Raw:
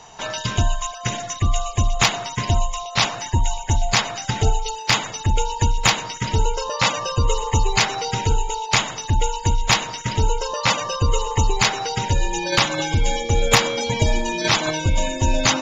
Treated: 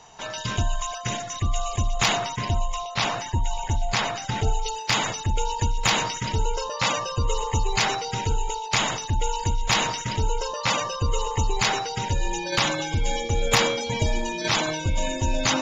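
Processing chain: 2.17–4.48 high shelf 6000 Hz -7.5 dB; sustainer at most 49 dB/s; gain -5.5 dB

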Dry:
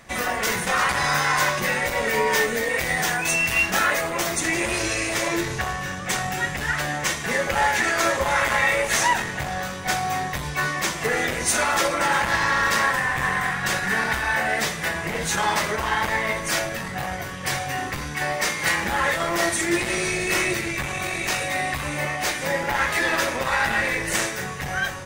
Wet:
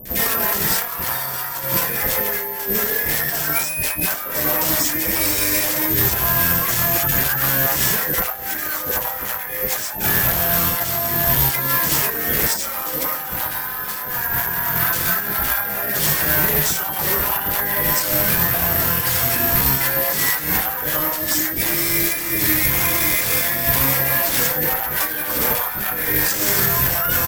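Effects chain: notches 60/120/180/240/300/360/420/480 Hz; negative-ratio compressor -28 dBFS, ratio -0.5; limiter -17 dBFS, peak gain reduction 6 dB; sine folder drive 13 dB, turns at -7.5 dBFS; three bands offset in time lows, highs, mids 50/80 ms, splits 620/2000 Hz; careless resampling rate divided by 3×, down none, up zero stuff; speed mistake 48 kHz file played as 44.1 kHz; gain -8.5 dB

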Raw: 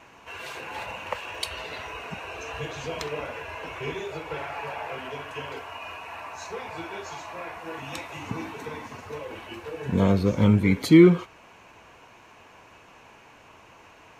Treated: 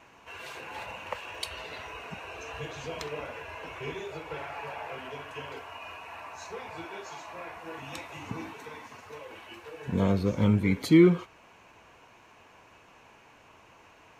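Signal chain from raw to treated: 6.85–7.28 HPF 150 Hz 12 dB/oct; 8.53–9.88 low shelf 450 Hz -8 dB; gain -4.5 dB

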